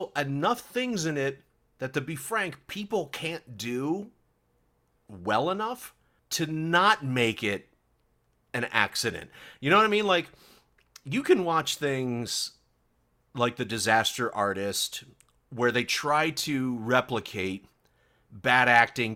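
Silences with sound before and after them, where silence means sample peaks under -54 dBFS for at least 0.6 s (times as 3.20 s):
4.10–5.10 s
7.73–8.54 s
12.56–13.35 s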